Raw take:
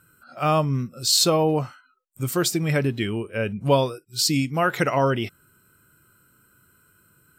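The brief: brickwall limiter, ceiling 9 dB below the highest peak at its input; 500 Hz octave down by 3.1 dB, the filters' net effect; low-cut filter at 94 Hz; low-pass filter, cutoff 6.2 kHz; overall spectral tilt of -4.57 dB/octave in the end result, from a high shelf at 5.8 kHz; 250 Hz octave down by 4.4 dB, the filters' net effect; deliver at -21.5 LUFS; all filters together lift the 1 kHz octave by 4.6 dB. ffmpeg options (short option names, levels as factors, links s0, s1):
-af "highpass=94,lowpass=6200,equalizer=f=250:t=o:g=-5,equalizer=f=500:t=o:g=-5,equalizer=f=1000:t=o:g=7.5,highshelf=f=5800:g=-7,volume=1.78,alimiter=limit=0.335:level=0:latency=1"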